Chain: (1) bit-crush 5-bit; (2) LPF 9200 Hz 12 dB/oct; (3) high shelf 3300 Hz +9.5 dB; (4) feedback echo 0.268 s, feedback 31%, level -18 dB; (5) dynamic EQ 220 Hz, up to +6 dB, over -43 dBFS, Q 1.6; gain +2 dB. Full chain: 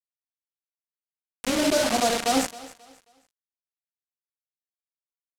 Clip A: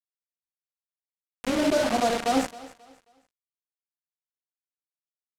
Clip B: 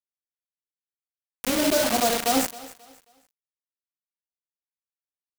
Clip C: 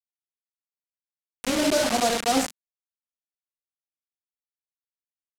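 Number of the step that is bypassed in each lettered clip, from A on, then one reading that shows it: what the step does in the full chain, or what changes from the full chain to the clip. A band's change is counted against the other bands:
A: 3, 8 kHz band -7.5 dB; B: 2, 8 kHz band +1.5 dB; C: 4, momentary loudness spread change -2 LU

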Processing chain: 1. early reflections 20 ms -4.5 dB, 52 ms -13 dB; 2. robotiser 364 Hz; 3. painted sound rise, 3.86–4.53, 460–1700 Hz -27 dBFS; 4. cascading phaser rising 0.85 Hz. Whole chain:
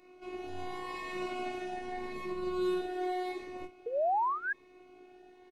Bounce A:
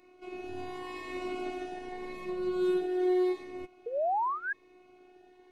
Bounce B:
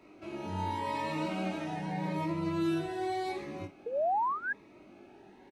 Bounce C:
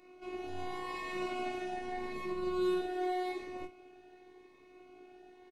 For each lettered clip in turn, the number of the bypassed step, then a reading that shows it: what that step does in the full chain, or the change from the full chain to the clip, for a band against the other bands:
1, momentary loudness spread change +1 LU; 2, 125 Hz band +16.0 dB; 3, 1 kHz band -5.5 dB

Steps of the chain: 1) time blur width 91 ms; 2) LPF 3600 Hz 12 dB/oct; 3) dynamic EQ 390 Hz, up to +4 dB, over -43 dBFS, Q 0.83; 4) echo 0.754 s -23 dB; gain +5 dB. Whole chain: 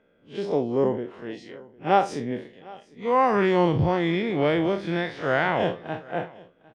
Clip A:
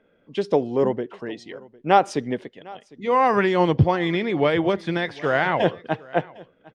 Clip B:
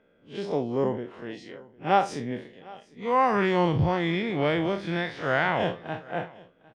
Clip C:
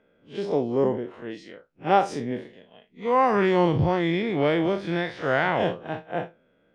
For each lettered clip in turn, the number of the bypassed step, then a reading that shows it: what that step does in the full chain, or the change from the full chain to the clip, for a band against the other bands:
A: 1, 250 Hz band -1.5 dB; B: 3, 500 Hz band -2.5 dB; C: 4, momentary loudness spread change -3 LU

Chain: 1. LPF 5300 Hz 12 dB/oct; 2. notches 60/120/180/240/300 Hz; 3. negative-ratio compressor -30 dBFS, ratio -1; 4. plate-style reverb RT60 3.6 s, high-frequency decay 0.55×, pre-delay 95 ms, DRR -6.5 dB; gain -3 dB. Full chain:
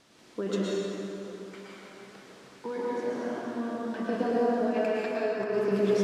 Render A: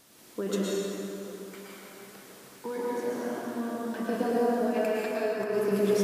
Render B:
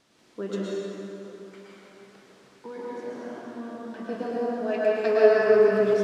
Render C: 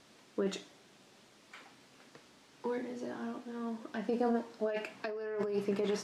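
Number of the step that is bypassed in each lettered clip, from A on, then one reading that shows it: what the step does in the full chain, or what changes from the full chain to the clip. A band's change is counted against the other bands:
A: 1, 8 kHz band +7.0 dB; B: 3, crest factor change +6.0 dB; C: 4, momentary loudness spread change -2 LU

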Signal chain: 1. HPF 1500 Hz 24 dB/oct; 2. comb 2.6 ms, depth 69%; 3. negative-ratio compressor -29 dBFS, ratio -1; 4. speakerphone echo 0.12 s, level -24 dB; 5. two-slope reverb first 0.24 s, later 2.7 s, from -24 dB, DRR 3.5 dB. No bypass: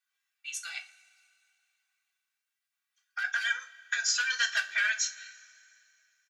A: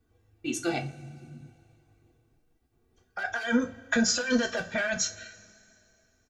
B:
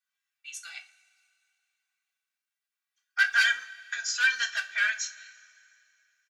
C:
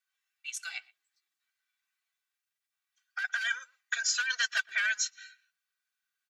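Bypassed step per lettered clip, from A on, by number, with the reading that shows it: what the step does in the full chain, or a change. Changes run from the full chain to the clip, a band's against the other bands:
1, 1 kHz band +6.5 dB; 3, momentary loudness spread change +4 LU; 5, loudness change -1.5 LU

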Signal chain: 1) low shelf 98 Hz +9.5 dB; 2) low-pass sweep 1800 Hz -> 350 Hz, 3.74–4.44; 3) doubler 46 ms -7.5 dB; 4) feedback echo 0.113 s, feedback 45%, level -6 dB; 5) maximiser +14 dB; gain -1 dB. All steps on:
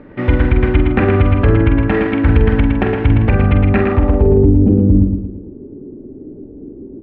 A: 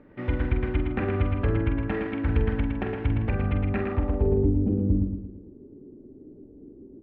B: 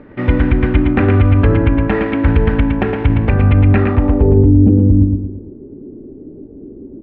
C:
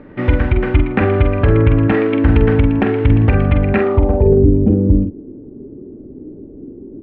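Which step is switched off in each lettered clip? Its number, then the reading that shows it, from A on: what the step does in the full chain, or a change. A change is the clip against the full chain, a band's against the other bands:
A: 5, crest factor change +3.5 dB; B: 3, 125 Hz band +2.0 dB; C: 4, momentary loudness spread change -5 LU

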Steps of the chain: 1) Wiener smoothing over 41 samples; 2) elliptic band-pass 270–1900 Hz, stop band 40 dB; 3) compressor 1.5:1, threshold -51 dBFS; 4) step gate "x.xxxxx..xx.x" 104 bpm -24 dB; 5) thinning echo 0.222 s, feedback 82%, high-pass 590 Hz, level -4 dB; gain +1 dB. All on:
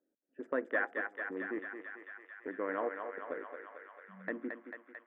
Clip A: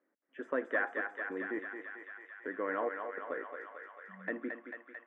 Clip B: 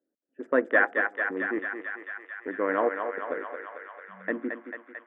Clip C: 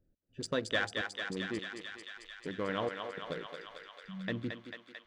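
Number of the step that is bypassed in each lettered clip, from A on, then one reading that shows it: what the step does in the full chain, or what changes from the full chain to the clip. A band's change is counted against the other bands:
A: 1, momentary loudness spread change -1 LU; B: 3, mean gain reduction 8.0 dB; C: 2, momentary loudness spread change -1 LU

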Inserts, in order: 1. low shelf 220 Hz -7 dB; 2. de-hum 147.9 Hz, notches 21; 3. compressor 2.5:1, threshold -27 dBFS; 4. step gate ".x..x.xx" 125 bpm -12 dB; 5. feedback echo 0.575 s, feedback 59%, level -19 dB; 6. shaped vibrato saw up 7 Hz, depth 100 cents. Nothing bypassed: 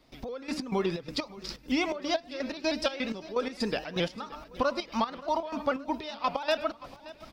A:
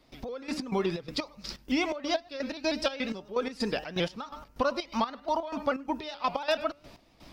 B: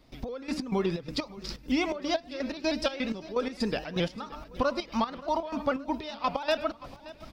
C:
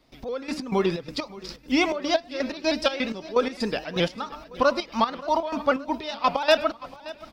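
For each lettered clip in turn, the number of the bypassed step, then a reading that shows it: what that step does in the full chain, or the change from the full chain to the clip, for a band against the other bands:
5, momentary loudness spread change -2 LU; 1, 125 Hz band +3.5 dB; 3, mean gain reduction 4.0 dB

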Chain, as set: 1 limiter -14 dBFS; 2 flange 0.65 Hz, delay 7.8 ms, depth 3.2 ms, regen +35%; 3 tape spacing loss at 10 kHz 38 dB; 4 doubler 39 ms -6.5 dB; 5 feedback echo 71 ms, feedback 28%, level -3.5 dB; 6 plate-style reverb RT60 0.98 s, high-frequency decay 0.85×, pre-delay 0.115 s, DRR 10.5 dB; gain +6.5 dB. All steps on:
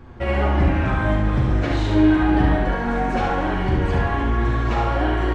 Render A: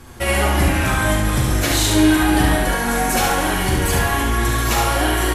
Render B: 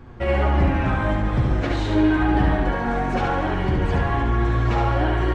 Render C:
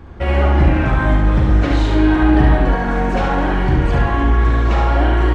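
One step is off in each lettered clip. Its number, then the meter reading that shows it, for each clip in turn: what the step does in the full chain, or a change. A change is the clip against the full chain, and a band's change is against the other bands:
3, 4 kHz band +11.0 dB; 4, 250 Hz band -1.5 dB; 2, 125 Hz band +2.0 dB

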